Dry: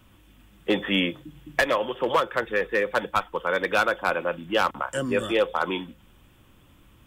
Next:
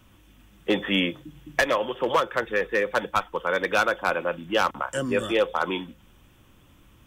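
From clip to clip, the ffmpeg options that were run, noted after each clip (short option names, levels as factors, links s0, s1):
-af "equalizer=f=6000:t=o:w=0.25:g=5.5"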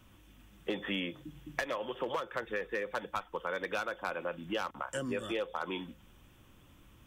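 -af "acompressor=threshold=0.0355:ratio=4,volume=0.631"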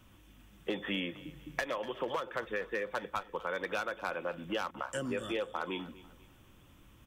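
-af "aecho=1:1:246|492|738:0.126|0.0453|0.0163"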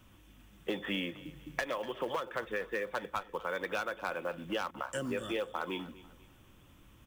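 -af "acrusher=bits=7:mode=log:mix=0:aa=0.000001"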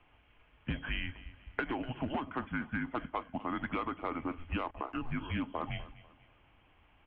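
-af "highpass=f=210:t=q:w=0.5412,highpass=f=210:t=q:w=1.307,lowpass=f=3300:t=q:w=0.5176,lowpass=f=3300:t=q:w=0.7071,lowpass=f=3300:t=q:w=1.932,afreqshift=-250"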